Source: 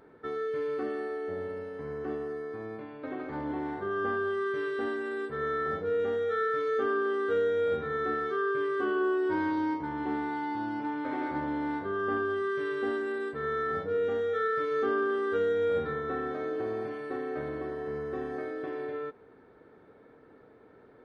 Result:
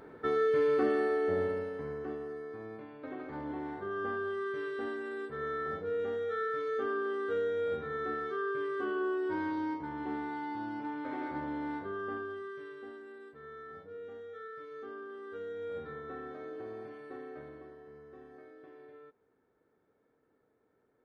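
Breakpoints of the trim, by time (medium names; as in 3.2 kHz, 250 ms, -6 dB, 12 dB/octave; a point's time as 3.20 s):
1.42 s +5 dB
2.14 s -5 dB
11.81 s -5 dB
12.92 s -16.5 dB
15.09 s -16.5 dB
15.97 s -10 dB
17.23 s -10 dB
17.91 s -17.5 dB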